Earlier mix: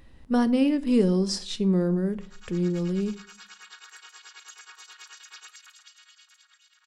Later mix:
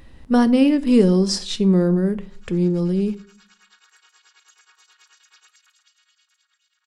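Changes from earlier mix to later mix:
speech +6.5 dB; background -8.0 dB

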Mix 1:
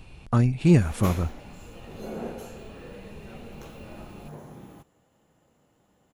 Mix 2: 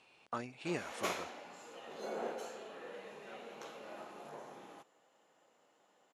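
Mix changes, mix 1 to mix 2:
speech -9.0 dB; master: add band-pass 510–7400 Hz

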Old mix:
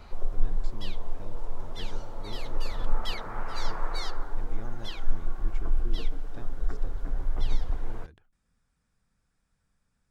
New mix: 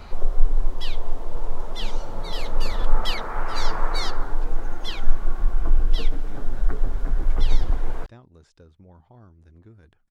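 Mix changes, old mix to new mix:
speech: entry +1.75 s; background +7.5 dB

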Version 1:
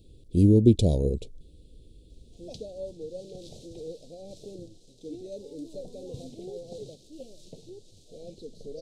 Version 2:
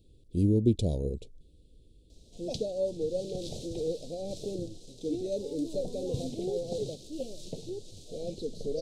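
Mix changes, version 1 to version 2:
speech -6.5 dB; background +7.0 dB

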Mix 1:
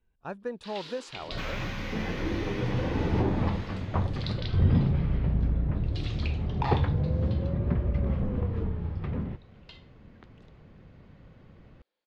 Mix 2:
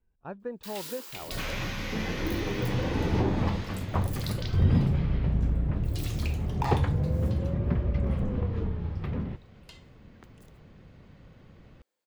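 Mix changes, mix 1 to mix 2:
speech: add tape spacing loss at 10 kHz 37 dB; first sound: remove resonant low-pass 4 kHz, resonance Q 2; master: add treble shelf 5.2 kHz +11.5 dB

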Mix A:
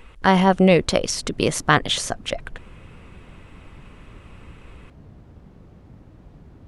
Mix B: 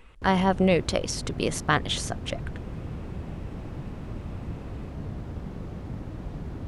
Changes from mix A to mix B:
speech -6.5 dB; background +10.5 dB

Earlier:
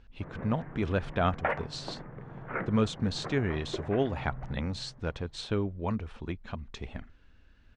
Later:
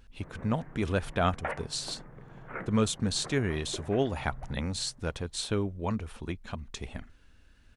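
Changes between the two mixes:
first sound -5.5 dB; master: remove distance through air 140 m

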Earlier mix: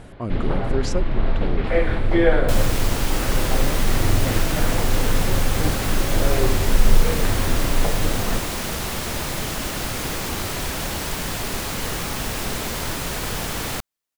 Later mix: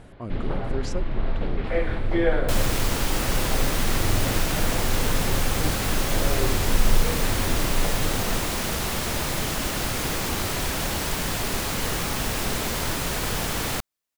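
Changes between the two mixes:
speech -6.5 dB; first sound -5.0 dB

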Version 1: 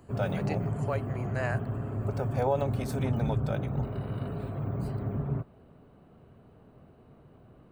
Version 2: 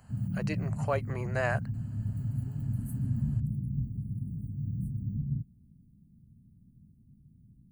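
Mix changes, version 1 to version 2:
speech +3.0 dB; background: add elliptic band-stop 210–9800 Hz, stop band 40 dB

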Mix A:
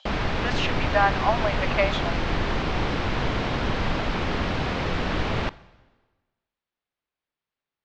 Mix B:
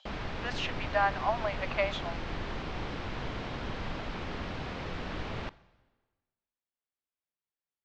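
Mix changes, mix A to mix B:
speech -6.5 dB; background -11.5 dB

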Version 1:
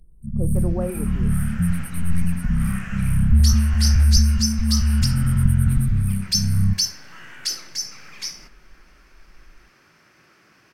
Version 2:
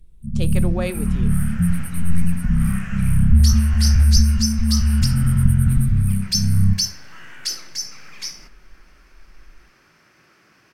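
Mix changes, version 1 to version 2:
speech: remove Bessel low-pass 790 Hz, order 8; first sound: send +8.0 dB

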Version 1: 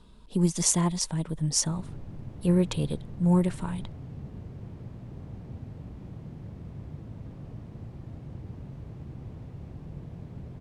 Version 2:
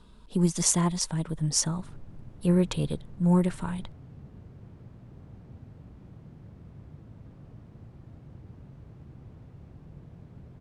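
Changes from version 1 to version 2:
background -6.5 dB; master: add peaking EQ 1.4 kHz +3.5 dB 0.6 oct

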